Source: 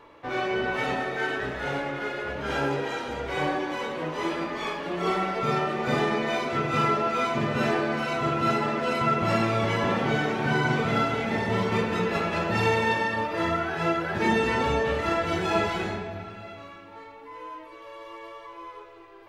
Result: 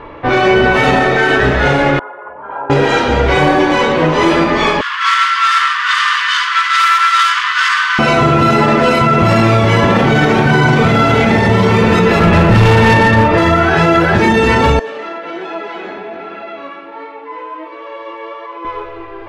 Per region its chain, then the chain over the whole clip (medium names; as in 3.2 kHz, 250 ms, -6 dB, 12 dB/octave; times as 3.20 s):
1.99–2.70 s: resonances exaggerated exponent 1.5 + band-pass filter 980 Hz, Q 8.2
4.81–7.99 s: comb filter that takes the minimum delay 0.61 ms + steep high-pass 1 kHz 96 dB/octave + doubling 17 ms -12.5 dB
12.19–13.38 s: tone controls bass +7 dB, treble -11 dB + hard clipper -23 dBFS
14.79–18.65 s: high-pass 270 Hz 24 dB/octave + compression 5:1, threshold -38 dBFS + flange 1.3 Hz, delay 5.9 ms, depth 5.6 ms, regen +61%
whole clip: level-controlled noise filter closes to 2.5 kHz, open at -22.5 dBFS; bass shelf 110 Hz +9.5 dB; loudness maximiser +20 dB; trim -1 dB